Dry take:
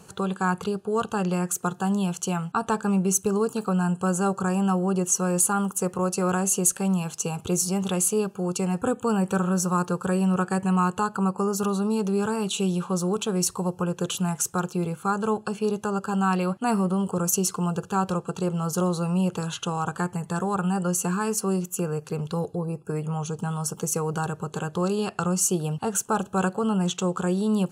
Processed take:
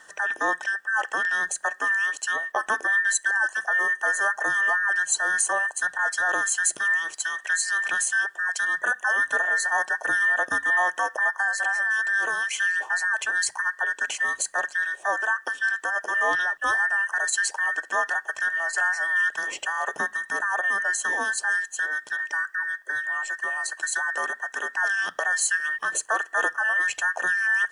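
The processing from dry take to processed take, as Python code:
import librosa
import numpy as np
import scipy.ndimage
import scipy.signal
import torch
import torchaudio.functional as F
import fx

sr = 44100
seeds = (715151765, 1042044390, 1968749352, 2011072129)

y = fx.band_invert(x, sr, width_hz=2000)
y = scipy.signal.sosfilt(scipy.signal.cheby1(10, 1.0, 10000.0, 'lowpass', fs=sr, output='sos'), y)
y = fx.quant_dither(y, sr, seeds[0], bits=12, dither='none')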